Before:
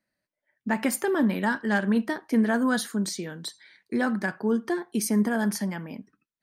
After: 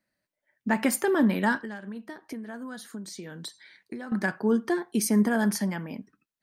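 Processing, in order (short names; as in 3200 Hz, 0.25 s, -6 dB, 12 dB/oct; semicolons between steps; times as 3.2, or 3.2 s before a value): 1.61–4.12 compressor 16:1, threshold -36 dBFS, peak gain reduction 19 dB; gain +1 dB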